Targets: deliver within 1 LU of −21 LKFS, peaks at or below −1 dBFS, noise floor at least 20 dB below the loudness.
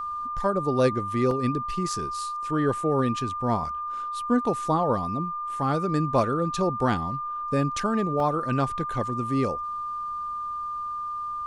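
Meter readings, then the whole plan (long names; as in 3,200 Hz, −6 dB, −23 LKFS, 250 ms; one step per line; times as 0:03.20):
number of dropouts 2; longest dropout 2.0 ms; interfering tone 1,200 Hz; level of the tone −29 dBFS; integrated loudness −26.5 LKFS; sample peak −10.5 dBFS; target loudness −21.0 LKFS
→ repair the gap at 0:01.31/0:08.20, 2 ms
notch filter 1,200 Hz, Q 30
level +5.5 dB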